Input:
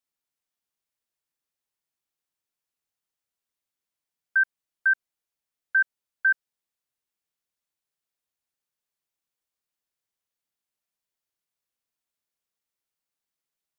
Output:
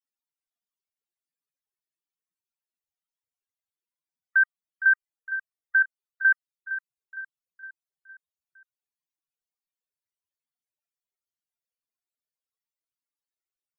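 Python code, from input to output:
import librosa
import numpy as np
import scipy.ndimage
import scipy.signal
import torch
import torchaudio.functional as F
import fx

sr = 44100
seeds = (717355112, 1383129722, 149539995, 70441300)

y = fx.spec_topn(x, sr, count=32)
y = fx.echo_feedback(y, sr, ms=461, feedback_pct=50, wet_db=-12.0)
y = F.gain(torch.from_numpy(y), 1.5).numpy()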